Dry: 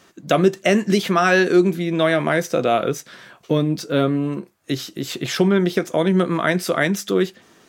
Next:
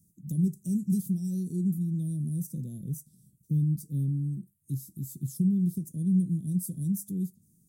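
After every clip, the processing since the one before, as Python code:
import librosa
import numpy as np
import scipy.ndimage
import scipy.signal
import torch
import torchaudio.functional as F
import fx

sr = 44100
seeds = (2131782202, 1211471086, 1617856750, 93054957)

y = scipy.signal.sosfilt(scipy.signal.ellip(3, 1.0, 70, [170.0, 9400.0], 'bandstop', fs=sr, output='sos'), x)
y = F.gain(torch.from_numpy(y), -1.5).numpy()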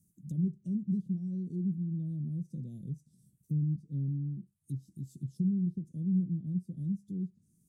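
y = fx.env_lowpass_down(x, sr, base_hz=1700.0, full_db=-27.5)
y = F.gain(torch.from_numpy(y), -4.5).numpy()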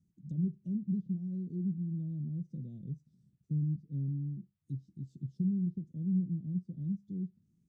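y = fx.air_absorb(x, sr, metres=170.0)
y = F.gain(torch.from_numpy(y), -1.5).numpy()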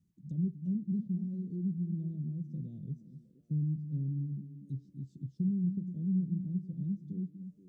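y = fx.echo_stepped(x, sr, ms=238, hz=200.0, octaves=0.7, feedback_pct=70, wet_db=-8.5)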